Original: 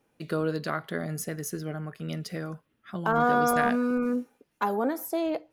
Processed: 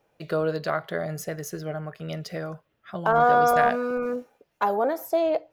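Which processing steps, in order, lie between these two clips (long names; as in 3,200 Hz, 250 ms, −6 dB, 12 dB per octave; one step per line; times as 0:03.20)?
graphic EQ with 15 bands 250 Hz −9 dB, 630 Hz +7 dB, 10,000 Hz −8 dB
level +2 dB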